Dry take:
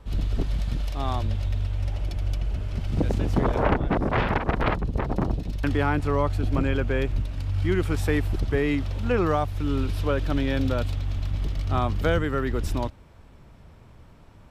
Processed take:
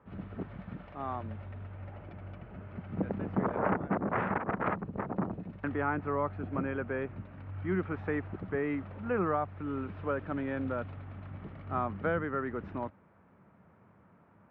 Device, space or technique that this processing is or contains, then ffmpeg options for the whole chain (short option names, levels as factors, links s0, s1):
bass cabinet: -af "highpass=f=300:p=1,highpass=76,equalizer=f=100:t=q:w=4:g=4,equalizer=f=190:t=q:w=4:g=10,equalizer=f=1300:t=q:w=4:g=3,lowpass=f=2000:w=0.5412,lowpass=f=2000:w=1.3066,equalizer=f=6700:t=o:w=0.5:g=4.5,volume=0.501"